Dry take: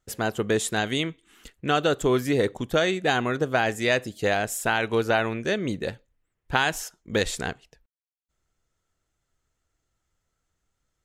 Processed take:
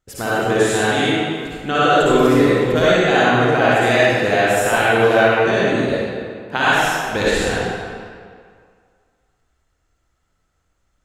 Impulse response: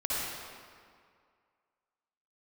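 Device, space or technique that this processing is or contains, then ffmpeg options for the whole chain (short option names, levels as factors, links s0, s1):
swimming-pool hall: -filter_complex "[0:a]asettb=1/sr,asplit=3[s0][s1][s2];[s0]atrim=end=5.884[s3];[s1]atrim=start=5.88:end=6.57,asetpts=PTS-STARTPTS,afade=t=in:d=0.004:c=qsin,afade=t=out:st=0.686:d=0.004:c=qsin,highpass=f=150:w=0.5412,highpass=f=150:w=1.3066[s4];[s2]atrim=start=6.566[s5];[s3][s4]acrossfade=d=0.004:c1=hsin:c2=qsin[s6];[s6][s5]acrossfade=d=0.004:c1=qsin:c2=hsin[s7];[1:a]atrim=start_sample=2205[s8];[s7][s8]afir=irnorm=-1:irlink=0,highshelf=f=6000:g=-4.5,volume=1.26"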